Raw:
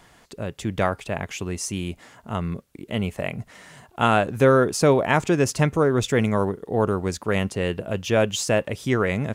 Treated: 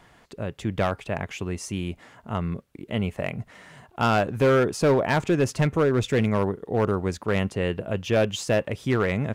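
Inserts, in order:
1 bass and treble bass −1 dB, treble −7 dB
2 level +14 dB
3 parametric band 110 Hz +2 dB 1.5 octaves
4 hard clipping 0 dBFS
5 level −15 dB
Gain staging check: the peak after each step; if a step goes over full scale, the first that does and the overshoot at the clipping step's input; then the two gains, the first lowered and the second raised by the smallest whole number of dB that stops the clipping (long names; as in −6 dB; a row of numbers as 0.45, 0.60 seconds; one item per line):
−5.5, +8.5, +8.5, 0.0, −15.0 dBFS
step 2, 8.5 dB
step 2 +5 dB, step 5 −6 dB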